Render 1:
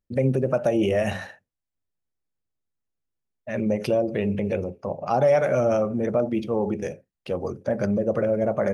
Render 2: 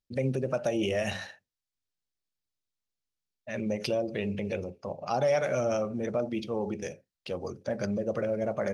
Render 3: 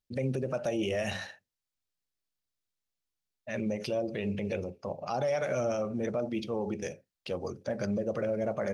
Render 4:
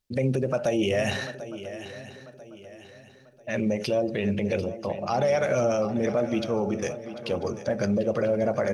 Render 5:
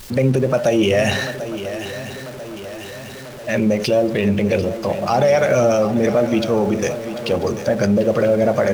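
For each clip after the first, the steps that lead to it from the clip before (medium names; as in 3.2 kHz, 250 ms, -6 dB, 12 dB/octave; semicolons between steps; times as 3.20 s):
peaking EQ 4.6 kHz +11.5 dB 1.8 oct; trim -7.5 dB
peak limiter -22.5 dBFS, peak gain reduction 6.5 dB
shuffle delay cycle 992 ms, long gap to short 3:1, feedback 37%, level -13.5 dB; trim +6.5 dB
jump at every zero crossing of -38.5 dBFS; trim +8 dB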